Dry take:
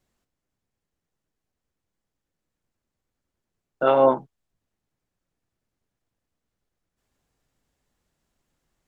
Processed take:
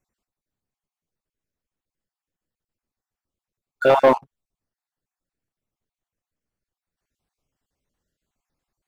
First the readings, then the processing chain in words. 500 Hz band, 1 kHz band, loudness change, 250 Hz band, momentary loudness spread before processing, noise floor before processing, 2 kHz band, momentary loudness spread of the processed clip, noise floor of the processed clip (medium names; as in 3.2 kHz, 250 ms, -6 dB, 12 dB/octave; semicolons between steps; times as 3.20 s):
+2.5 dB, +2.5 dB, +2.5 dB, +1.5 dB, 9 LU, -84 dBFS, +8.5 dB, 8 LU, under -85 dBFS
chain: random holes in the spectrogram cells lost 36%; waveshaping leveller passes 2